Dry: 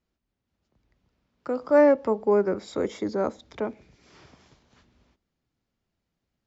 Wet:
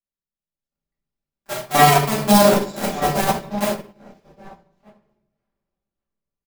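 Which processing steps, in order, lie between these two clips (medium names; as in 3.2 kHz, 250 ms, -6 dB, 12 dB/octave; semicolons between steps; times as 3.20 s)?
cycle switcher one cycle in 2, inverted; wavefolder -14 dBFS; treble shelf 6 kHz +12 dB; comb 5.1 ms, depth 53%; echo from a far wall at 210 m, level -8 dB; simulated room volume 380 m³, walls mixed, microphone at 2.3 m; loudness maximiser +4 dB; upward expansion 2.5:1, over -29 dBFS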